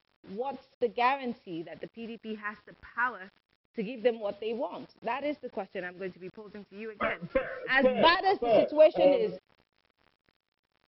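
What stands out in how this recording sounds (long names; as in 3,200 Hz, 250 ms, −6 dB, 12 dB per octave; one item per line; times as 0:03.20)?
phaser sweep stages 4, 0.26 Hz, lowest notch 700–1,500 Hz
a quantiser's noise floor 10 bits, dither none
tremolo triangle 4 Hz, depth 80%
MP2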